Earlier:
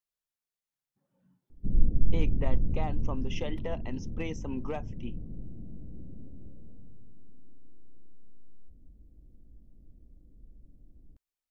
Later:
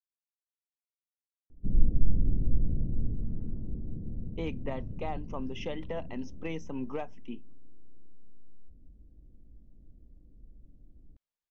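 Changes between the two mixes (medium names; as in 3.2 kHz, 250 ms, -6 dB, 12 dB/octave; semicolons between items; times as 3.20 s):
speech: entry +2.25 s; master: add distance through air 85 m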